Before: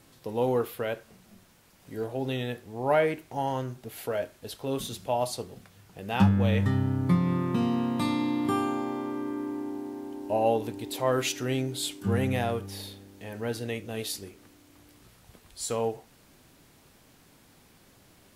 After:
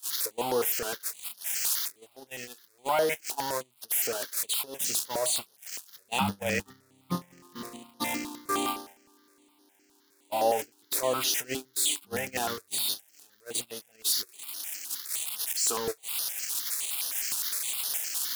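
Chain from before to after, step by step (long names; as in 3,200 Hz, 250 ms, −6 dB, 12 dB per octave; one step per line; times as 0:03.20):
spike at every zero crossing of −21 dBFS
meter weighting curve A
noise gate −29 dBFS, range −34 dB
in parallel at +1 dB: compressor whose output falls as the input rises −36 dBFS, ratio −1
on the sum: step-sequenced phaser 9.7 Hz 560–7,700 Hz
level +1.5 dB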